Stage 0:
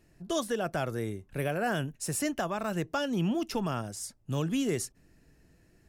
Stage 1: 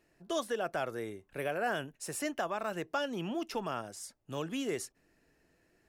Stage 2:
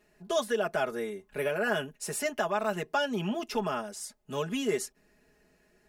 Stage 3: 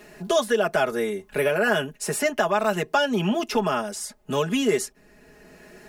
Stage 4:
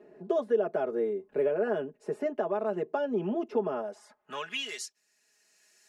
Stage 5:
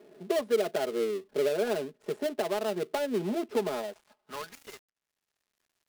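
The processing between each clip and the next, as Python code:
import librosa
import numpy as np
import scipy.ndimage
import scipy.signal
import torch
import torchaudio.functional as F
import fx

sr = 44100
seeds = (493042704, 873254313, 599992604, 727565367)

y1 = fx.bass_treble(x, sr, bass_db=-13, treble_db=-5)
y1 = F.gain(torch.from_numpy(y1), -1.5).numpy()
y2 = y1 + 0.95 * np.pad(y1, (int(4.8 * sr / 1000.0), 0))[:len(y1)]
y2 = F.gain(torch.from_numpy(y2), 2.0).numpy()
y3 = fx.band_squash(y2, sr, depth_pct=40)
y3 = F.gain(torch.from_numpy(y3), 7.5).numpy()
y4 = fx.filter_sweep_bandpass(y3, sr, from_hz=400.0, to_hz=6800.0, start_s=3.71, end_s=5.0, q=1.6)
y4 = F.gain(torch.from_numpy(y4), -2.0).numpy()
y5 = fx.dead_time(y4, sr, dead_ms=0.19)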